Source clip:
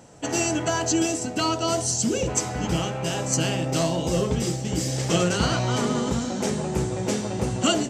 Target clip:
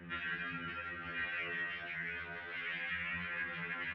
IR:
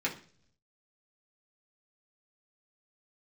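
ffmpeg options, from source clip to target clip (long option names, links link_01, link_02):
-filter_complex "[0:a]afftfilt=real='re*lt(hypot(re,im),0.1)':imag='im*lt(hypot(re,im),0.1)':win_size=1024:overlap=0.75,asetrate=88200,aresample=44100,acontrast=28,asoftclip=type=tanh:threshold=-24.5dB,acrusher=bits=11:mix=0:aa=0.000001,flanger=delay=17.5:depth=7.1:speed=0.31,equalizer=frequency=250:width_type=o:width=1:gain=10,equalizer=frequency=1000:width_type=o:width=1:gain=-12,equalizer=frequency=2000:width_type=o:width=1:gain=11,asplit=2[link_01][link_02];[link_02]aecho=0:1:165:0.0891[link_03];[link_01][link_03]amix=inputs=2:normalize=0,highpass=frequency=170:width_type=q:width=0.5412,highpass=frequency=170:width_type=q:width=1.307,lowpass=frequency=2900:width_type=q:width=0.5176,lowpass=frequency=2900:width_type=q:width=0.7071,lowpass=frequency=2900:width_type=q:width=1.932,afreqshift=-98,afftfilt=real='re*2*eq(mod(b,4),0)':imag='im*2*eq(mod(b,4),0)':win_size=2048:overlap=0.75,volume=-4dB"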